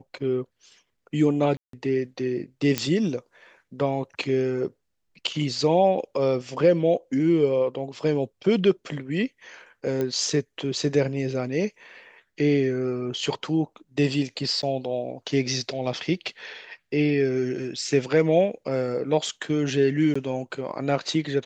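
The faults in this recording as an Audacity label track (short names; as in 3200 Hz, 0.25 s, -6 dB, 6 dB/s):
1.570000	1.730000	gap 0.163 s
2.780000	2.780000	pop -7 dBFS
10.010000	10.010000	pop -15 dBFS
14.620000	14.630000	gap 9.4 ms
20.140000	20.160000	gap 15 ms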